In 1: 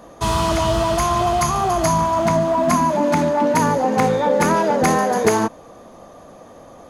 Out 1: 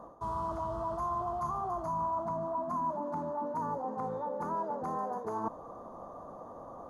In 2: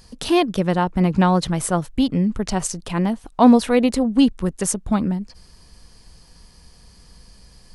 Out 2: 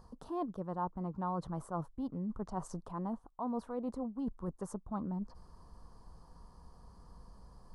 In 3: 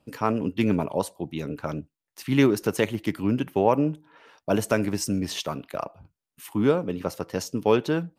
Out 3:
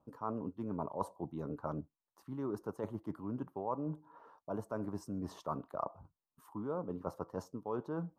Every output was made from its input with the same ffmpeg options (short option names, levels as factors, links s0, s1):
-af "areverse,acompressor=threshold=0.0355:ratio=10,areverse,highshelf=f=1600:t=q:w=3:g=-13.5,volume=0.447"